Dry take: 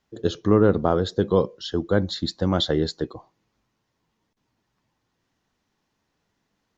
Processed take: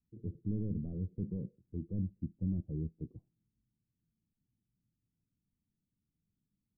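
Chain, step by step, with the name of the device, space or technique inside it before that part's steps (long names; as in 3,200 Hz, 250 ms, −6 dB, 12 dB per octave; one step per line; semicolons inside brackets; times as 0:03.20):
overdriven synthesiser ladder filter (soft clipping −18.5 dBFS, distortion −8 dB; transistor ladder low-pass 260 Hz, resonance 20%)
level −1.5 dB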